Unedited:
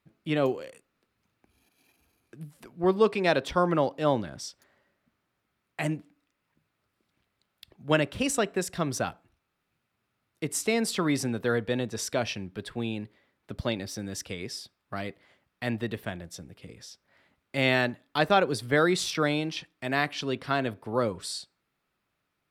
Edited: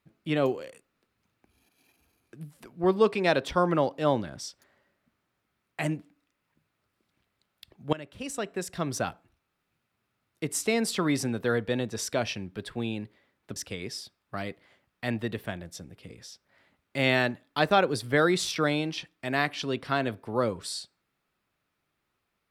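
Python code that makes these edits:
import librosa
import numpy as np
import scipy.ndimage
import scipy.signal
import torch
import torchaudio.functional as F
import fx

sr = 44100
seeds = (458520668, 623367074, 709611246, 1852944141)

y = fx.edit(x, sr, fx.fade_in_from(start_s=7.93, length_s=1.13, floor_db=-20.5),
    fx.cut(start_s=13.56, length_s=0.59), tone=tone)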